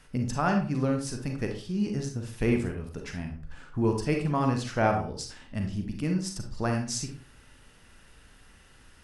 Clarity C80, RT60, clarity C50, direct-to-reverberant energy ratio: 12.0 dB, 0.40 s, 6.0 dB, 3.0 dB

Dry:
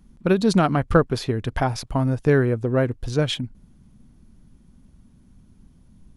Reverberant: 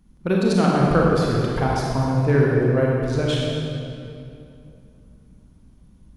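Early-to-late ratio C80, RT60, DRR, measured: 0.0 dB, 2.7 s, -3.5 dB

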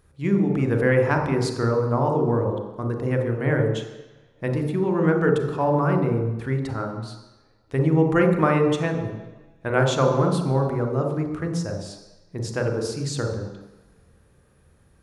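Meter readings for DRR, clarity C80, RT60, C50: 2.0 dB, 7.0 dB, 1.1 s, 4.5 dB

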